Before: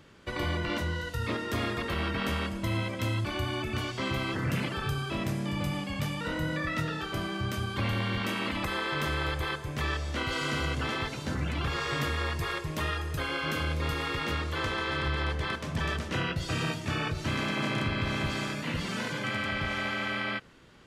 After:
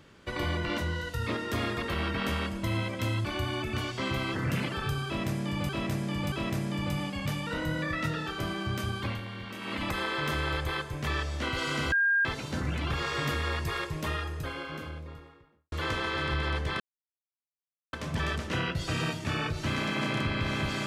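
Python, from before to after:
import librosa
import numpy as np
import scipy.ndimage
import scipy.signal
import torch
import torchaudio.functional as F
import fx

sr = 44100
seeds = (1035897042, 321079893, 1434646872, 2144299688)

y = fx.studio_fade_out(x, sr, start_s=12.55, length_s=1.91)
y = fx.edit(y, sr, fx.repeat(start_s=5.06, length_s=0.63, count=3),
    fx.fade_down_up(start_s=7.71, length_s=0.86, db=-9.5, fade_s=0.25),
    fx.bleep(start_s=10.66, length_s=0.33, hz=1610.0, db=-21.5),
    fx.insert_silence(at_s=15.54, length_s=1.13), tone=tone)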